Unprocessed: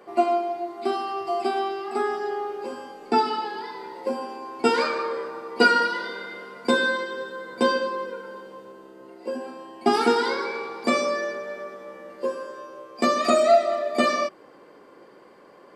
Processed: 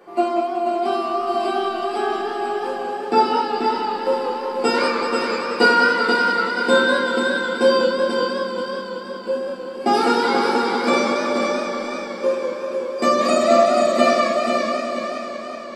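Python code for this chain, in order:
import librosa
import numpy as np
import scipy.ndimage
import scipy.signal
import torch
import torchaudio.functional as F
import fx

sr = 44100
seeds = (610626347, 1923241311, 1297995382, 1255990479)

p1 = x + fx.echo_feedback(x, sr, ms=485, feedback_pct=36, wet_db=-5.0, dry=0)
p2 = fx.room_shoebox(p1, sr, seeds[0], volume_m3=71.0, walls='mixed', distance_m=0.71)
y = fx.echo_warbled(p2, sr, ms=188, feedback_pct=77, rate_hz=2.8, cents=101, wet_db=-8)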